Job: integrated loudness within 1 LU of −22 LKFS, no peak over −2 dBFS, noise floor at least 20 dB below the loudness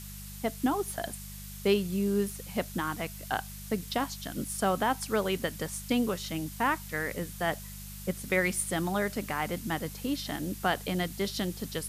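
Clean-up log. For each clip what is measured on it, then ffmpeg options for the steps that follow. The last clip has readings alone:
mains hum 50 Hz; hum harmonics up to 200 Hz; level of the hum −42 dBFS; background noise floor −43 dBFS; target noise floor −52 dBFS; integrated loudness −31.5 LKFS; sample peak −14.0 dBFS; target loudness −22.0 LKFS
→ -af "bandreject=frequency=50:width_type=h:width=4,bandreject=frequency=100:width_type=h:width=4,bandreject=frequency=150:width_type=h:width=4,bandreject=frequency=200:width_type=h:width=4"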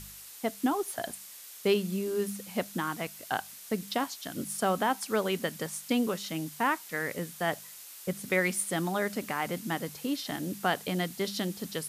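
mains hum none found; background noise floor −48 dBFS; target noise floor −52 dBFS
→ -af "afftdn=noise_reduction=6:noise_floor=-48"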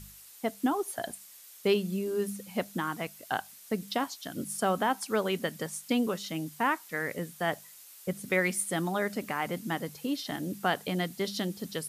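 background noise floor −52 dBFS; integrated loudness −32.0 LKFS; sample peak −14.0 dBFS; target loudness −22.0 LKFS
→ -af "volume=10dB"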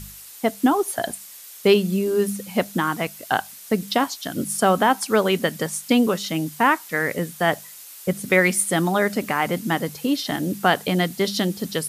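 integrated loudness −22.0 LKFS; sample peak −4.0 dBFS; background noise floor −42 dBFS

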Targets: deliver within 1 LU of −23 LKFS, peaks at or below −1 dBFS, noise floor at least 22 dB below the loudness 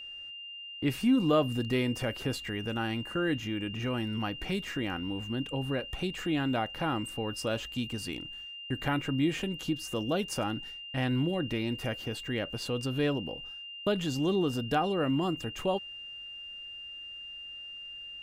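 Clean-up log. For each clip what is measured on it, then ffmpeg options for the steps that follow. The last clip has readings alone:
interfering tone 2,800 Hz; level of the tone −41 dBFS; integrated loudness −32.5 LKFS; sample peak −14.5 dBFS; target loudness −23.0 LKFS
→ -af "bandreject=frequency=2800:width=30"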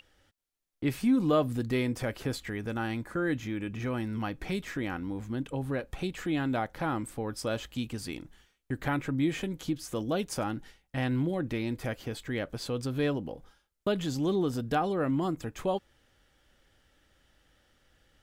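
interfering tone none found; integrated loudness −32.0 LKFS; sample peak −14.5 dBFS; target loudness −23.0 LKFS
→ -af "volume=9dB"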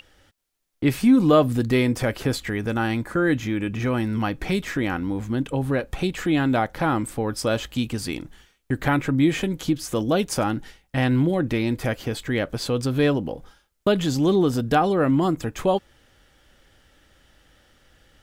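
integrated loudness −23.0 LKFS; sample peak −5.5 dBFS; background noise floor −68 dBFS

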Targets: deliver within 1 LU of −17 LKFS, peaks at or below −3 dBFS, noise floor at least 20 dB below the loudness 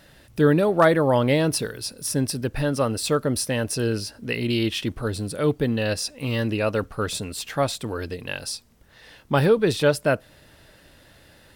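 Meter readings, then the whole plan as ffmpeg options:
integrated loudness −23.5 LKFS; sample peak −6.5 dBFS; target loudness −17.0 LKFS
→ -af "volume=6.5dB,alimiter=limit=-3dB:level=0:latency=1"

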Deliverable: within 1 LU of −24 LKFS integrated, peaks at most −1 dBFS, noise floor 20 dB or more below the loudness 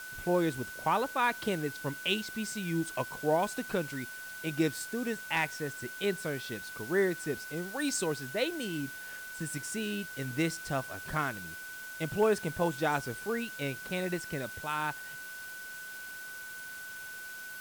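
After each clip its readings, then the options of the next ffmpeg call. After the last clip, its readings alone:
interfering tone 1,500 Hz; level of the tone −42 dBFS; background noise floor −44 dBFS; target noise floor −54 dBFS; integrated loudness −34.0 LKFS; sample peak −17.0 dBFS; target loudness −24.0 LKFS
→ -af "bandreject=frequency=1500:width=30"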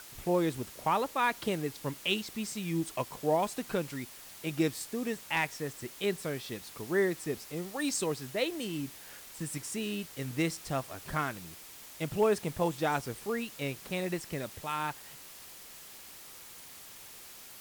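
interfering tone none found; background noise floor −50 dBFS; target noise floor −54 dBFS
→ -af "afftdn=noise_reduction=6:noise_floor=-50"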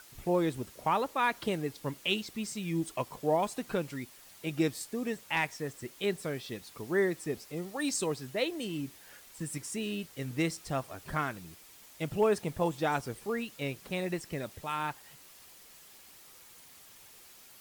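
background noise floor −55 dBFS; integrated loudness −33.5 LKFS; sample peak −17.0 dBFS; target loudness −24.0 LKFS
→ -af "volume=9.5dB"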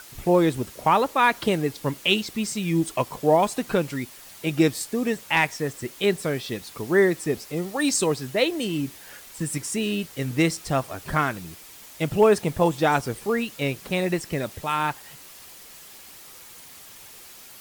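integrated loudness −24.0 LKFS; sample peak −7.5 dBFS; background noise floor −46 dBFS

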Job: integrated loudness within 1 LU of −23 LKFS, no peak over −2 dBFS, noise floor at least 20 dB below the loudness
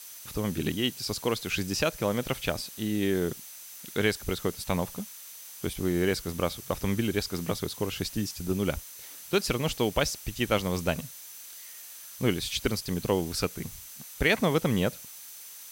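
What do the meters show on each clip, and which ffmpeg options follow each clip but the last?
interfering tone 6,100 Hz; level of the tone −53 dBFS; background noise floor −46 dBFS; target noise floor −50 dBFS; integrated loudness −29.5 LKFS; sample peak −9.0 dBFS; target loudness −23.0 LKFS
→ -af "bandreject=frequency=6100:width=30"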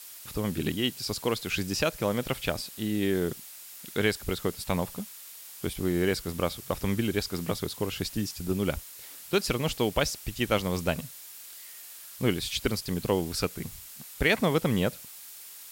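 interfering tone none found; background noise floor −46 dBFS; target noise floor −50 dBFS
→ -af "afftdn=noise_reduction=6:noise_floor=-46"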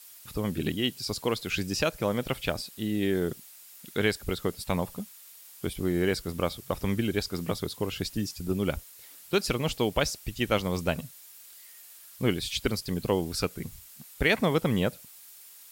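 background noise floor −51 dBFS; integrated loudness −29.5 LKFS; sample peak −9.5 dBFS; target loudness −23.0 LKFS
→ -af "volume=6.5dB"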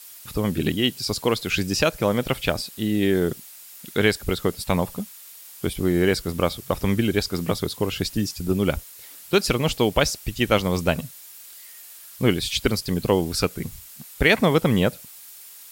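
integrated loudness −23.0 LKFS; sample peak −3.0 dBFS; background noise floor −44 dBFS

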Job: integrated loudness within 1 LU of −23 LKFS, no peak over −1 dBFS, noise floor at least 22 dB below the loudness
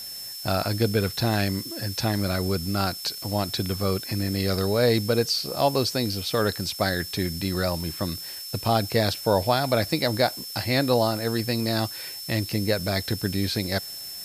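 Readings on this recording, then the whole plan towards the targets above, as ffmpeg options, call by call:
interfering tone 5,300 Hz; level of the tone −36 dBFS; background noise floor −37 dBFS; target noise floor −48 dBFS; integrated loudness −25.5 LKFS; sample peak −7.0 dBFS; target loudness −23.0 LKFS
→ -af "bandreject=frequency=5300:width=30"
-af "afftdn=noise_reduction=11:noise_floor=-37"
-af "volume=2.5dB"

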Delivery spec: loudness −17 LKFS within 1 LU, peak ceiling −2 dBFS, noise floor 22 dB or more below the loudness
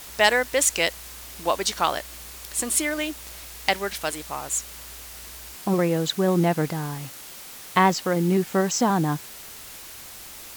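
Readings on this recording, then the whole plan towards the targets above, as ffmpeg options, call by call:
background noise floor −41 dBFS; target noise floor −46 dBFS; integrated loudness −24.0 LKFS; sample peak −4.0 dBFS; target loudness −17.0 LKFS
→ -af "afftdn=noise_reduction=6:noise_floor=-41"
-af "volume=7dB,alimiter=limit=-2dB:level=0:latency=1"

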